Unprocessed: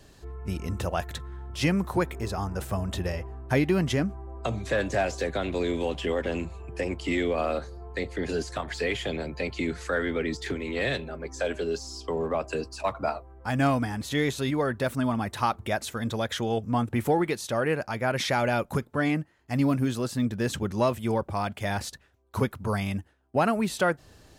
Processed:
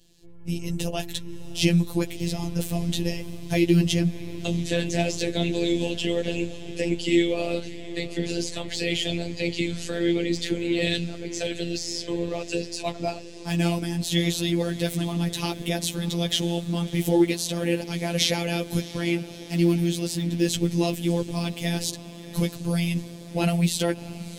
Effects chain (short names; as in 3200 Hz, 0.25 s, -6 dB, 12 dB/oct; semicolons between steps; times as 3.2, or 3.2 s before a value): EQ curve 330 Hz 0 dB, 1300 Hz -18 dB, 2900 Hz +3 dB; AGC gain up to 11.5 dB; diffused feedback echo 0.654 s, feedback 66%, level -16 dB; chorus voices 6, 0.8 Hz, delay 12 ms, depth 3.1 ms; robotiser 171 Hz; gain -1 dB